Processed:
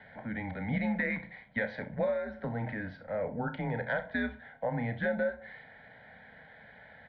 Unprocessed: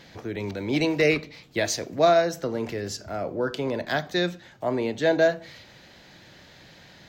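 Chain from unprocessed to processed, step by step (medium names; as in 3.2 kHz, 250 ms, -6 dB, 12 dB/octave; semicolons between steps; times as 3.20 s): mistuned SSB -110 Hz 260–2700 Hz; static phaser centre 1.8 kHz, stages 8; compression 10:1, threshold -30 dBFS, peak gain reduction 12.5 dB; early reflections 33 ms -11.5 dB, 65 ms -16 dB; trim +2 dB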